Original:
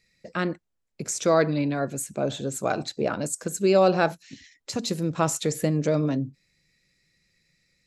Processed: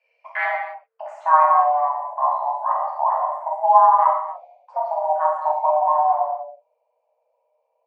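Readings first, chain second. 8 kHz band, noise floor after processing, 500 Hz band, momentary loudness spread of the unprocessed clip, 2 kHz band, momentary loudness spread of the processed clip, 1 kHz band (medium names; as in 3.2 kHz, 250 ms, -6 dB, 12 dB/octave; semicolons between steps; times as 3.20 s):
under -35 dB, -72 dBFS, -0.5 dB, 13 LU, +3.0 dB, 17 LU, +16.0 dB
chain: low-pass sweep 1.5 kHz -> 490 Hz, 0.63–1.78 s; frequency shift +450 Hz; gated-style reverb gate 320 ms falling, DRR -5 dB; trim -3.5 dB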